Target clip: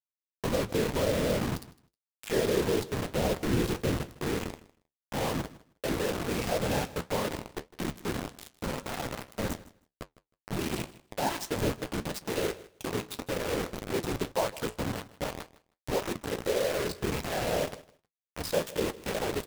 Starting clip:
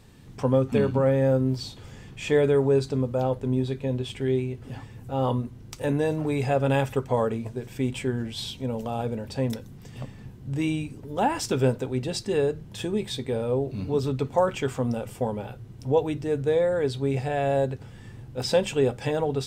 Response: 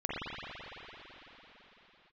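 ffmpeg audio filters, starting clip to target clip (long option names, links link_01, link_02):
-filter_complex "[0:a]asplit=3[link_01][link_02][link_03];[link_01]afade=type=out:start_time=3.13:duration=0.02[link_04];[link_02]equalizer=frequency=160:width_type=o:width=0.67:gain=10,equalizer=frequency=400:width_type=o:width=0.67:gain=7,equalizer=frequency=4000:width_type=o:width=0.67:gain=4,afade=type=in:start_time=3.13:duration=0.02,afade=type=out:start_time=3.97:duration=0.02[link_05];[link_03]afade=type=in:start_time=3.97:duration=0.02[link_06];[link_04][link_05][link_06]amix=inputs=3:normalize=0,asplit=2[link_07][link_08];[link_08]asoftclip=type=tanh:threshold=-21.5dB,volume=-12dB[link_09];[link_07][link_09]amix=inputs=2:normalize=0,afftfilt=real='hypot(re,im)*cos(2*PI*random(0))':imag='hypot(re,im)*sin(2*PI*random(1))':win_size=512:overlap=0.75,acrusher=bits=4:mix=0:aa=0.000001,flanger=delay=9.1:depth=8.5:regen=-58:speed=1.8:shape=sinusoidal,asplit=2[link_10][link_11];[link_11]aecho=0:1:157|314:0.112|0.018[link_12];[link_10][link_12]amix=inputs=2:normalize=0,volume=1.5dB"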